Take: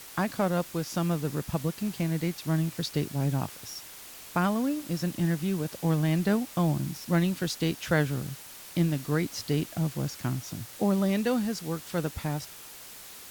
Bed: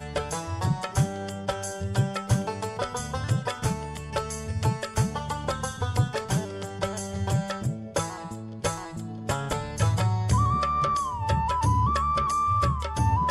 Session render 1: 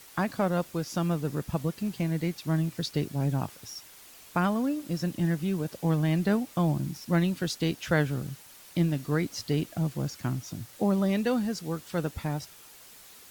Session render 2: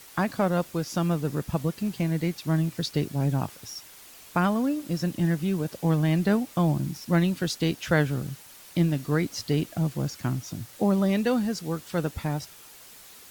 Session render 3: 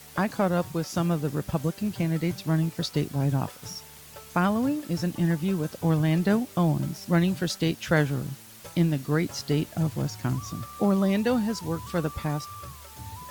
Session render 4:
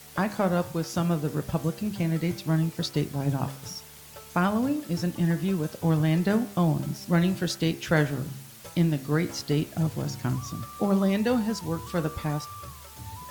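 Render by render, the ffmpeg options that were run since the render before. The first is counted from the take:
-af "afftdn=nr=6:nf=-46"
-af "volume=2.5dB"
-filter_complex "[1:a]volume=-18dB[a];[0:a][a]amix=inputs=2:normalize=0"
-af "bandreject=f=67.82:t=h:w=4,bandreject=f=135.64:t=h:w=4,bandreject=f=203.46:t=h:w=4,bandreject=f=271.28:t=h:w=4,bandreject=f=339.1:t=h:w=4,bandreject=f=406.92:t=h:w=4,bandreject=f=474.74:t=h:w=4,bandreject=f=542.56:t=h:w=4,bandreject=f=610.38:t=h:w=4,bandreject=f=678.2:t=h:w=4,bandreject=f=746.02:t=h:w=4,bandreject=f=813.84:t=h:w=4,bandreject=f=881.66:t=h:w=4,bandreject=f=949.48:t=h:w=4,bandreject=f=1.0173k:t=h:w=4,bandreject=f=1.08512k:t=h:w=4,bandreject=f=1.15294k:t=h:w=4,bandreject=f=1.22076k:t=h:w=4,bandreject=f=1.28858k:t=h:w=4,bandreject=f=1.3564k:t=h:w=4,bandreject=f=1.42422k:t=h:w=4,bandreject=f=1.49204k:t=h:w=4,bandreject=f=1.55986k:t=h:w=4,bandreject=f=1.62768k:t=h:w=4,bandreject=f=1.6955k:t=h:w=4,bandreject=f=1.76332k:t=h:w=4,bandreject=f=1.83114k:t=h:w=4,bandreject=f=1.89896k:t=h:w=4,bandreject=f=1.96678k:t=h:w=4,bandreject=f=2.0346k:t=h:w=4,bandreject=f=2.10242k:t=h:w=4,bandreject=f=2.17024k:t=h:w=4,bandreject=f=2.23806k:t=h:w=4,bandreject=f=2.30588k:t=h:w=4,bandreject=f=2.3737k:t=h:w=4,bandreject=f=2.44152k:t=h:w=4,bandreject=f=2.50934k:t=h:w=4,bandreject=f=2.57716k:t=h:w=4,bandreject=f=2.64498k:t=h:w=4,bandreject=f=2.7128k:t=h:w=4"

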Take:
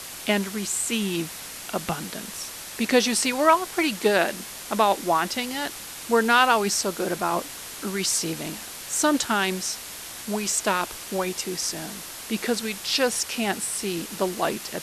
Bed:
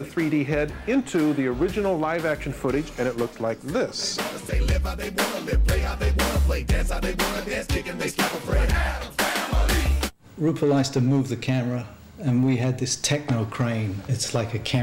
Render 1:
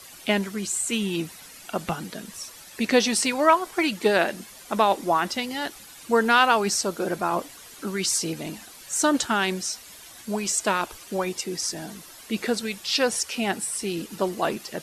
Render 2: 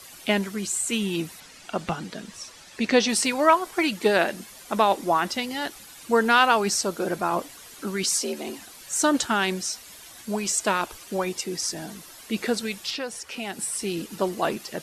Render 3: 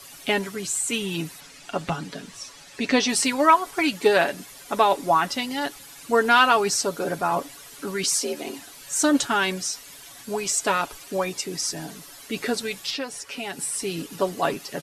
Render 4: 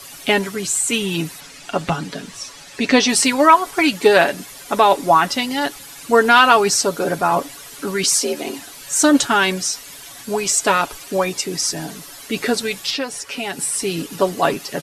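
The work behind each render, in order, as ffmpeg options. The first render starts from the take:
-af "afftdn=nr=11:nf=-38"
-filter_complex "[0:a]asettb=1/sr,asplit=3[a][b][c];[a]atrim=end=1.404[d];[b]atrim=start=1.4:end=3.09,asetpts=PTS-STARTPTS,afade=t=in:d=0.004:c=qsin,afade=t=out:st=1.686:d=0.004:c=qsin,lowpass=7.1k[e];[c]atrim=start=3.086[f];[d][e]acrossfade=d=0.004:c1=hsin:c2=qsin[g];[g][f]acrossfade=d=0.004:c1=qsin:c2=hsin,asettb=1/sr,asplit=3[h][i][j];[h]atrim=end=8.034[k];[i]atrim=start=8.03:end=8.6,asetpts=PTS-STARTPTS,afade=t=in:d=0.004:c=qsin,afade=t=out:st=0.566:d=0.004:c=qsin,afreqshift=65[l];[j]atrim=start=8.596[m];[k][l]acrossfade=d=0.004:c1=hsin:c2=qsin[n];[n][m]acrossfade=d=0.004:c1=qsin:c2=hsin,asettb=1/sr,asplit=3[o][p][q];[o]atrim=end=12.904[r];[p]atrim=start=12.9:end=13.59,asetpts=PTS-STARTPTS,afade=t=in:d=0.004:c=qsin,afade=t=out:st=0.686:d=0.004:c=qsin,acrossover=split=530|2900[s][t][u];[s]acompressor=threshold=-36dB:ratio=4[v];[t]acompressor=threshold=-35dB:ratio=4[w];[u]acompressor=threshold=-38dB:ratio=4[x];[v][w][x]amix=inputs=3:normalize=0[y];[q]atrim=start=13.586[z];[r][y]acrossfade=d=0.004:c1=hsin:c2=qsin[aa];[aa][z]acrossfade=d=0.004:c1=qsin:c2=hsin"
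-af "aecho=1:1:7.1:0.56"
-af "volume=6.5dB,alimiter=limit=-1dB:level=0:latency=1"

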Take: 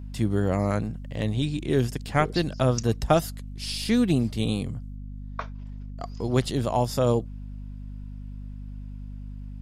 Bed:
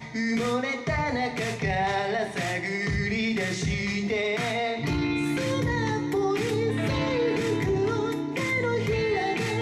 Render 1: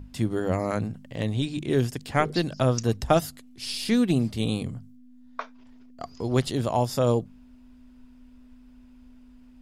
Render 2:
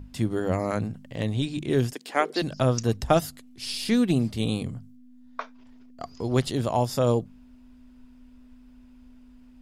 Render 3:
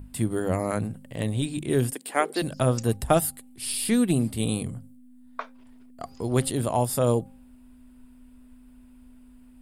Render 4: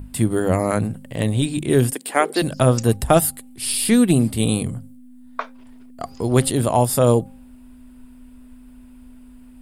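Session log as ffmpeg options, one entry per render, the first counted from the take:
-af "bandreject=f=50:t=h:w=6,bandreject=f=100:t=h:w=6,bandreject=f=150:t=h:w=6,bandreject=f=200:t=h:w=6"
-filter_complex "[0:a]asettb=1/sr,asplit=3[a][b][c];[a]atrim=end=1.934[d];[b]atrim=start=1.93:end=2.42,asetpts=PTS-STARTPTS,afade=t=in:d=0.004:c=qsin,afade=t=out:st=0.486:d=0.004:c=qsin,highpass=f=290:w=0.5412,highpass=f=290:w=1.3066[e];[c]atrim=start=2.416[f];[d][e]acrossfade=d=0.004:c1=hsin:c2=qsin[g];[g][f]acrossfade=d=0.004:c1=qsin:c2=hsin"
-af "highshelf=f=7.4k:t=q:w=3:g=7.5,bandreject=f=265.1:t=h:w=4,bandreject=f=530.2:t=h:w=4,bandreject=f=795.3:t=h:w=4"
-af "volume=7dB,alimiter=limit=-3dB:level=0:latency=1"

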